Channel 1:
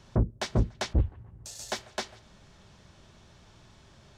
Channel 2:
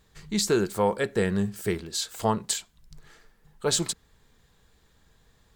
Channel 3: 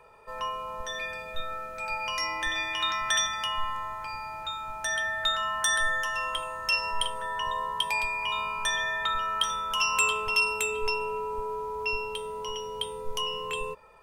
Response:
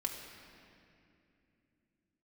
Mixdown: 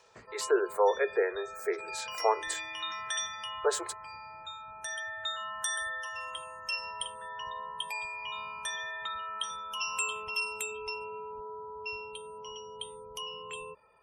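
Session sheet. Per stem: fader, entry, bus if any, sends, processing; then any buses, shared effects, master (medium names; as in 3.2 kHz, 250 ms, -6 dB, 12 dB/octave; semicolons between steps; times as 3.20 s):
-11.5 dB, 0.00 s, no send, high-pass 340 Hz 6 dB/octave; tilt shelf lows -8.5 dB, about 1.2 kHz; auto duck -11 dB, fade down 0.35 s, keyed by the second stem
-0.5 dB, 0.00 s, no send, steep high-pass 380 Hz 72 dB/octave; high-order bell 6.2 kHz -12.5 dB 2.7 oct
-9.0 dB, 0.00 s, no send, high-pass 63 Hz 12 dB/octave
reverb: none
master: spectral gate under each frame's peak -30 dB strong; peaking EQ 11 kHz +7 dB 1.1 oct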